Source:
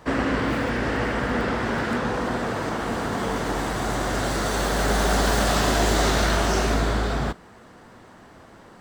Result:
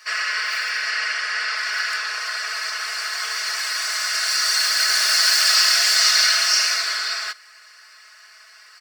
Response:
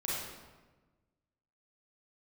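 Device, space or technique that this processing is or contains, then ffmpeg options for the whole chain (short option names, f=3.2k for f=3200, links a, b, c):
headphones lying on a table: -filter_complex "[0:a]asettb=1/sr,asplit=3[a][b][c];[a]atrim=end=0.904[d];[b]atrim=start=0.9:end=1.56,asetpts=PTS-STARTPTS,afade=t=in:d=0.004:c=qsin,afade=t=out:st=0.656:d=0.004:c=qsin,lowpass=9.8k[e];[c]atrim=start=1.556[f];[d][e]acrossfade=d=0.004:c1=hsin:c2=qsin[g];[g][f]acrossfade=d=0.004:c1=qsin:c2=hsin,highpass=f=1.5k:w=0.5412,highpass=f=1.5k:w=1.3066,superequalizer=7b=3.55:8b=2.24:9b=0.631:13b=0.355:14b=2.51,equalizer=f=3.6k:t=o:w=0.48:g=6.5,aecho=1:1:4.7:0.87,volume=5.5dB"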